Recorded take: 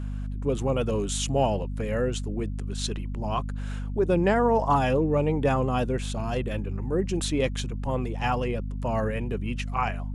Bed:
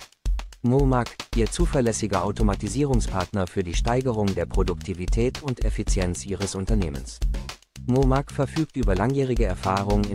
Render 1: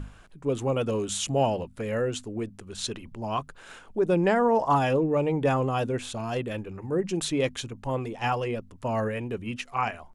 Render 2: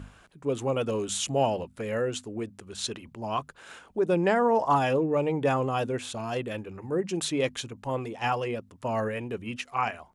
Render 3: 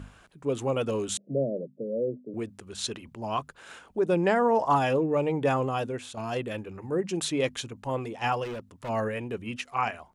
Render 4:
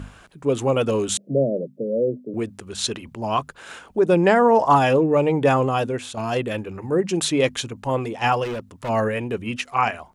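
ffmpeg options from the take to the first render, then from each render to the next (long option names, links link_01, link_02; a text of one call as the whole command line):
ffmpeg -i in.wav -af "bandreject=frequency=50:width_type=h:width=6,bandreject=frequency=100:width_type=h:width=6,bandreject=frequency=150:width_type=h:width=6,bandreject=frequency=200:width_type=h:width=6,bandreject=frequency=250:width_type=h:width=6" out.wav
ffmpeg -i in.wav -af "highpass=46,lowshelf=frequency=230:gain=-4.5" out.wav
ffmpeg -i in.wav -filter_complex "[0:a]asettb=1/sr,asplit=3[link_01][link_02][link_03];[link_01]atrim=end=1.174[link_04];[link_02]atrim=start=1.17:end=2.34,asetpts=PTS-STARTPTS,afade=type=in:duration=0.004:curve=qsin,afade=type=out:start_time=1.166:duration=0.004:curve=qsin,asuperpass=centerf=280:order=20:qfactor=0.58[link_05];[link_03]atrim=start=2.336[link_06];[link_04][link_05]acrossfade=duration=0.004:curve1=hsin:curve2=qsin[link_07];[link_07][link_06]acrossfade=duration=0.004:curve1=qsin:curve2=hsin,asplit=3[link_08][link_09][link_10];[link_08]afade=type=out:start_time=8.43:duration=0.02[link_11];[link_09]asoftclip=type=hard:threshold=-33dB,afade=type=in:start_time=8.43:duration=0.02,afade=type=out:start_time=8.88:duration=0.02[link_12];[link_10]afade=type=in:start_time=8.88:duration=0.02[link_13];[link_11][link_12][link_13]amix=inputs=3:normalize=0,asplit=2[link_14][link_15];[link_14]atrim=end=6.17,asetpts=PTS-STARTPTS,afade=type=out:start_time=5.62:duration=0.55:silence=0.473151[link_16];[link_15]atrim=start=6.17,asetpts=PTS-STARTPTS,afade=type=in:duration=0.004:curve=hsin:silence=0.473151[link_17];[link_16][link_17]concat=n=2:v=0:a=1" out.wav
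ffmpeg -i in.wav -af "volume=7.5dB" out.wav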